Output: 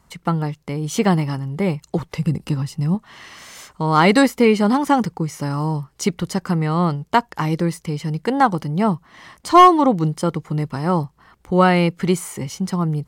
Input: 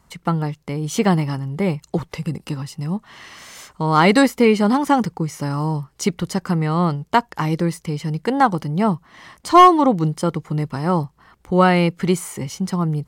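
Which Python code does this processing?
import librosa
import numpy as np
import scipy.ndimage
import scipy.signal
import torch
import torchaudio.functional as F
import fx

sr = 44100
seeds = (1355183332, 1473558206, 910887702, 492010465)

y = fx.low_shelf(x, sr, hz=240.0, db=7.5, at=(2.17, 2.95))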